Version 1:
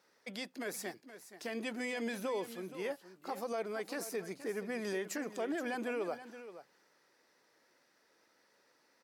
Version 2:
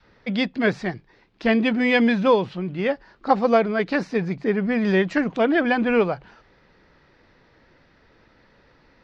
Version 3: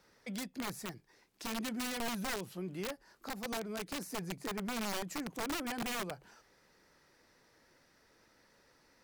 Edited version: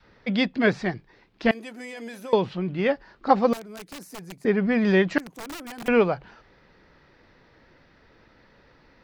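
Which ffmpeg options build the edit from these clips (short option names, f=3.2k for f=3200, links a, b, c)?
-filter_complex "[2:a]asplit=2[a][b];[1:a]asplit=4[c][d][e][f];[c]atrim=end=1.512[g];[0:a]atrim=start=1.508:end=2.332[h];[d]atrim=start=2.328:end=3.532[i];[a]atrim=start=3.528:end=4.452[j];[e]atrim=start=4.448:end=5.182[k];[b]atrim=start=5.178:end=5.882[l];[f]atrim=start=5.878[m];[g][h]acrossfade=d=0.004:c1=hsin:c2=hsin[n];[n][i]acrossfade=d=0.004:c1=hsin:c2=hsin[o];[o][j]acrossfade=d=0.004:c1=hsin:c2=hsin[p];[p][k]acrossfade=d=0.004:c1=hsin:c2=hsin[q];[q][l]acrossfade=d=0.004:c1=hsin:c2=hsin[r];[r][m]acrossfade=d=0.004:c1=hsin:c2=hsin"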